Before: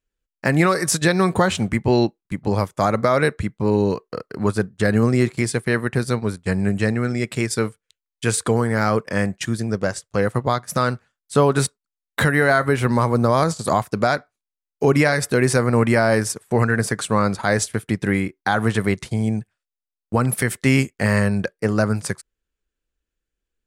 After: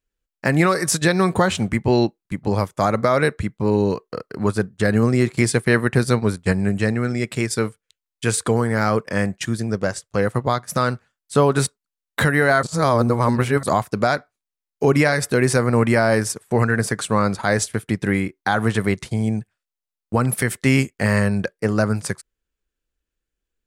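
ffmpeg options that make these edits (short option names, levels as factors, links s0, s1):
-filter_complex "[0:a]asplit=5[s0][s1][s2][s3][s4];[s0]atrim=end=5.342[s5];[s1]atrim=start=5.338:end=6.522,asetpts=PTS-STARTPTS,volume=1.5[s6];[s2]atrim=start=6.518:end=12.632[s7];[s3]atrim=start=12.628:end=13.632,asetpts=PTS-STARTPTS,areverse[s8];[s4]atrim=start=13.628[s9];[s5][s6]acrossfade=d=0.004:c1=hsin:c2=hsin[s10];[s10][s7]acrossfade=d=0.004:c1=hsin:c2=hsin[s11];[s11][s8]acrossfade=d=0.004:c1=hsin:c2=hsin[s12];[s12][s9]acrossfade=d=0.004:c1=hsin:c2=hsin"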